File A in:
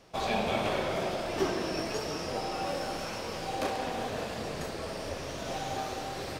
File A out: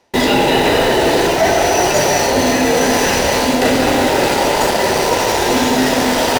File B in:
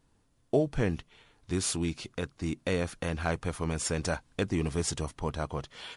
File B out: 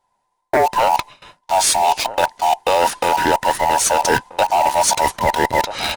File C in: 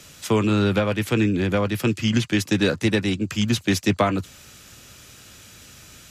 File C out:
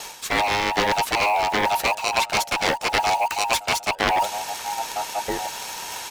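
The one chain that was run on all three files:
every band turned upside down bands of 1 kHz; in parallel at -5 dB: word length cut 6-bit, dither none; on the sum: echo from a far wall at 220 m, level -22 dB; gate with hold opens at -45 dBFS; Chebyshev shaper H 3 -11 dB, 7 -19 dB, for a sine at -1 dBFS; reverse; compression 5:1, threshold -37 dBFS; reverse; peak normalisation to -3 dBFS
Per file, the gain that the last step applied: +26.0 dB, +23.5 dB, +16.5 dB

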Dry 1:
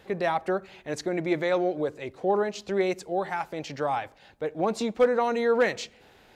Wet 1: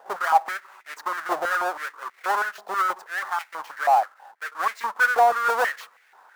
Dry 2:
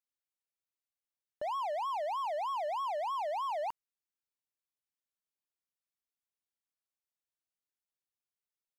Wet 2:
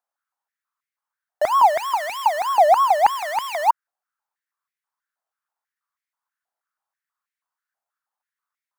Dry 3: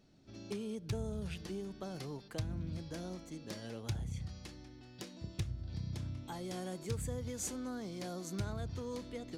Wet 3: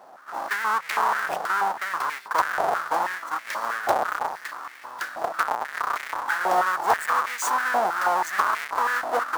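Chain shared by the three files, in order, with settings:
square wave that keeps the level; resonant high shelf 1.9 kHz -8 dB, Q 1.5; step-sequenced high-pass 6.2 Hz 720–2100 Hz; peak normalisation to -6 dBFS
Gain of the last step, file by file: -3.0 dB, +8.0 dB, +15.5 dB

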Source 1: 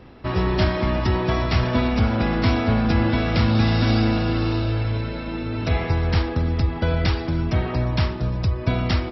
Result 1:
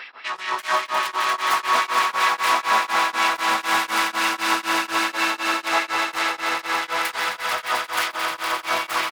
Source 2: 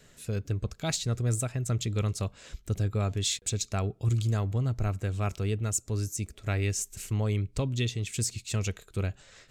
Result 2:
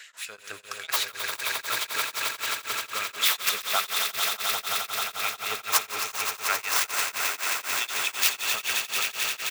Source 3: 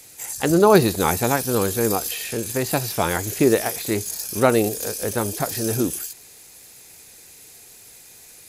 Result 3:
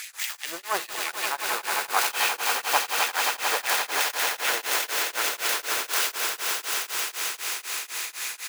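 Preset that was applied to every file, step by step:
tracing distortion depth 0.27 ms; treble shelf 6.6 kHz -5 dB; reverse; compression 5:1, threshold -31 dBFS; reverse; delay 148 ms -15.5 dB; dynamic bell 1.8 kHz, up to -4 dB, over -52 dBFS, Q 0.81; LFO high-pass sine 5 Hz 980–2400 Hz; on a send: echo with a slow build-up 88 ms, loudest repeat 8, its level -8 dB; on the sum: tremolo of two beating tones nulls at 4 Hz; peak normalisation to -6 dBFS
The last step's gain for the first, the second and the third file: +18.0 dB, +14.5 dB, +11.5 dB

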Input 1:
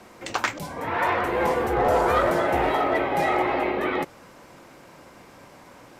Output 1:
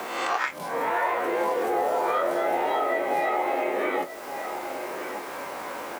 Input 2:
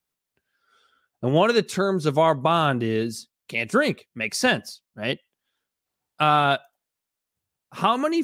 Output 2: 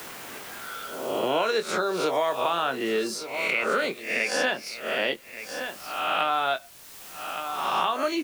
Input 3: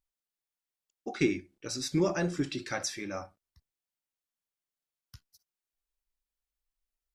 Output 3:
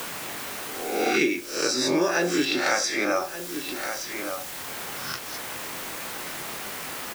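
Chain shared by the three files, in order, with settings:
reverse spectral sustain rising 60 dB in 0.52 s; spectral noise reduction 6 dB; high-pass 410 Hz 12 dB/octave; treble shelf 11 kHz -10 dB; compression 2:1, threshold -37 dBFS; delay 1171 ms -18 dB; word length cut 10-bit, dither triangular; doubling 23 ms -9.5 dB; three bands compressed up and down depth 70%; normalise loudness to -27 LUFS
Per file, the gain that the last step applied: +6.5 dB, +6.5 dB, +16.5 dB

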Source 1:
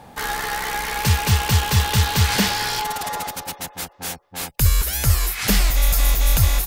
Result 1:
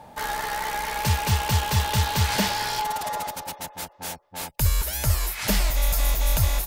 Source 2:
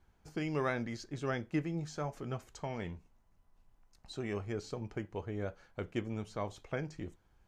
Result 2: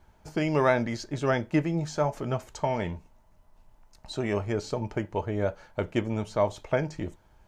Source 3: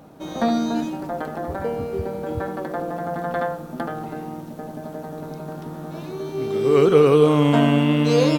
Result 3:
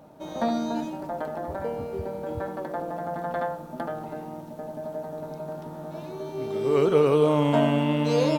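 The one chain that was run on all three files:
small resonant body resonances 620/890 Hz, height 10 dB, ringing for 50 ms; peak normalisation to -9 dBFS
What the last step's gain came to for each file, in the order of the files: -5.0 dB, +8.5 dB, -6.5 dB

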